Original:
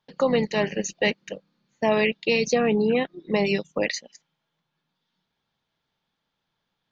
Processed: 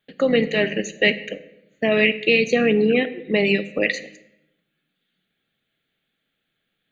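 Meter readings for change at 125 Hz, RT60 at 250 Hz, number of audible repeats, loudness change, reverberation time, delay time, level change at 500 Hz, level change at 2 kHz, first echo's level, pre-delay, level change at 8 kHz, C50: +2.0 dB, 1.1 s, none, +4.0 dB, 0.80 s, none, +3.5 dB, +7.0 dB, none, 3 ms, n/a, 15.0 dB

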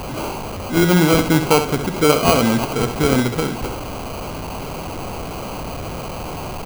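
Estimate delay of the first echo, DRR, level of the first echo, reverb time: 66 ms, none, -8.5 dB, none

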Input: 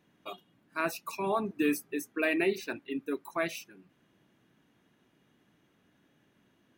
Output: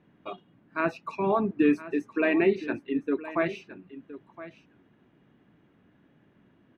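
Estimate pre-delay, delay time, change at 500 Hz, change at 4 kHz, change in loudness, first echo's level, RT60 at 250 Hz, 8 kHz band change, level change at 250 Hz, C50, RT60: none, 1.016 s, +5.5 dB, -3.0 dB, +5.0 dB, -15.5 dB, none, under -15 dB, +7.0 dB, none, none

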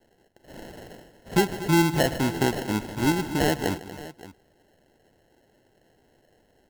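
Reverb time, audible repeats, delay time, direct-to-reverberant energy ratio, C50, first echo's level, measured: none, 3, 0.152 s, none, none, -16.5 dB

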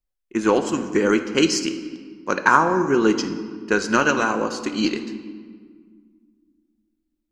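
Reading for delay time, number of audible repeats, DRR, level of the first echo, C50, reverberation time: none, none, 7.5 dB, none, 10.0 dB, 1.8 s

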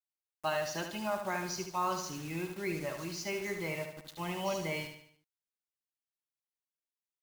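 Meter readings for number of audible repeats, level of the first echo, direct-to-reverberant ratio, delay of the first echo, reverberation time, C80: 5, -7.0 dB, none, 74 ms, none, none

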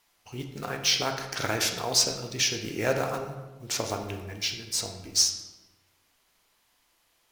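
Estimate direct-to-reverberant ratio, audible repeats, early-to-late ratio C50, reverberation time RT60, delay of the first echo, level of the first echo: 4.0 dB, none, 7.0 dB, 1.2 s, none, none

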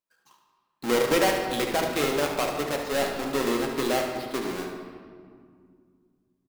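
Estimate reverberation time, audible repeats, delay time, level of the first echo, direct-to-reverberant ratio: 2.1 s, 2, 73 ms, -8.5 dB, 0.5 dB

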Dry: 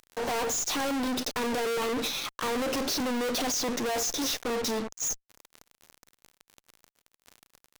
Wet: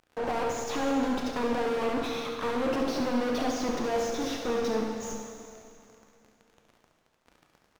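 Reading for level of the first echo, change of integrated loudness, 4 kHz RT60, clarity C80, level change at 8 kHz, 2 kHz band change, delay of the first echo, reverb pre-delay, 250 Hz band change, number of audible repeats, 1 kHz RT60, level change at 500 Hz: -8.0 dB, -1.0 dB, 2.4 s, 4.0 dB, -11.0 dB, -2.0 dB, 69 ms, 7 ms, +2.0 dB, 1, 2.6 s, +2.0 dB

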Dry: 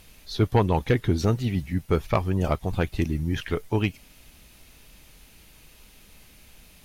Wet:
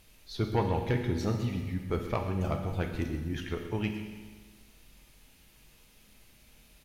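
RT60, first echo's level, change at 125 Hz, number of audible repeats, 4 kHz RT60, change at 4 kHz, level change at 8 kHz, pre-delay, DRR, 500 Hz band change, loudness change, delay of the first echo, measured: 1.5 s, -15.0 dB, -7.0 dB, 1, 1.4 s, -7.0 dB, -7.0 dB, 9 ms, 3.5 dB, -7.0 dB, -7.0 dB, 0.129 s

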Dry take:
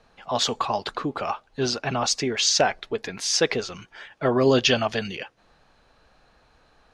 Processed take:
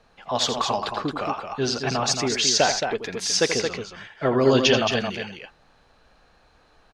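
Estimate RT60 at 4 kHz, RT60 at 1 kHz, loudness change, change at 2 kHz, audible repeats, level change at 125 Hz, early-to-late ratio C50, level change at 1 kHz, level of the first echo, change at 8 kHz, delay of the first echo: none, none, +1.0 dB, +1.5 dB, 2, +1.5 dB, none, +1.0 dB, -10.0 dB, +1.0 dB, 83 ms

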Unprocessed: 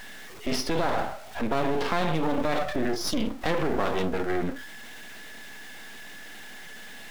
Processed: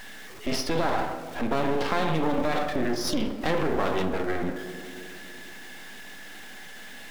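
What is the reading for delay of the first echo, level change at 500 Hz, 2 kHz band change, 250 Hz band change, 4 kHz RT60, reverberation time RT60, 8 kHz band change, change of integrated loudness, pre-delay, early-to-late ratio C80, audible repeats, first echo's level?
none, +0.5 dB, +0.5 dB, +0.5 dB, 1.2 s, 2.5 s, 0.0 dB, +0.5 dB, 4 ms, 11.0 dB, none, none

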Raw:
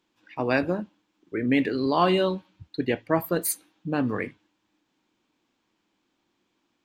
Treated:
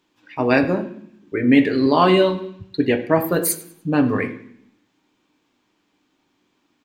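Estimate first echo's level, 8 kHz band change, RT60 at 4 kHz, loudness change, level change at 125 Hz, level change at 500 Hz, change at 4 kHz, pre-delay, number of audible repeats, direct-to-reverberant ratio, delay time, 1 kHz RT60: -18.5 dB, +5.5 dB, 0.70 s, +7.0 dB, +6.5 dB, +7.0 dB, +6.0 dB, 3 ms, 2, 5.0 dB, 99 ms, 0.65 s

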